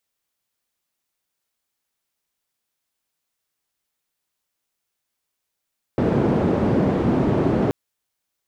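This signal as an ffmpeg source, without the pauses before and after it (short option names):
-f lavfi -i "anoisesrc=c=white:d=1.73:r=44100:seed=1,highpass=f=110,lowpass=f=330,volume=5.3dB"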